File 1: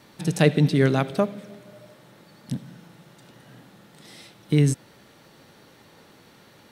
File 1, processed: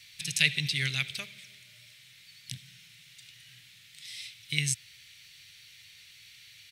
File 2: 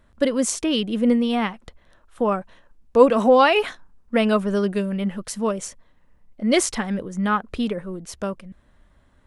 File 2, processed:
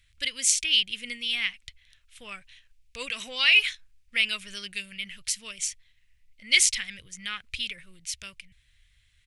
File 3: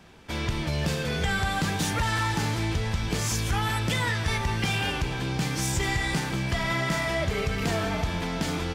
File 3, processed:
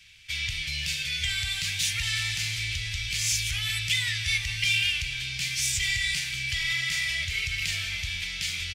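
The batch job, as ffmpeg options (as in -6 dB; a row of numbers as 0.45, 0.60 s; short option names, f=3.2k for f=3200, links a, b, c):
-af "firequalizer=gain_entry='entry(110,0);entry(210,-22);entry(860,-22);entry(2200,14);entry(13000,8)':delay=0.05:min_phase=1,volume=-7dB"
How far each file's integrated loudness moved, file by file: -7.5, -3.5, +0.5 LU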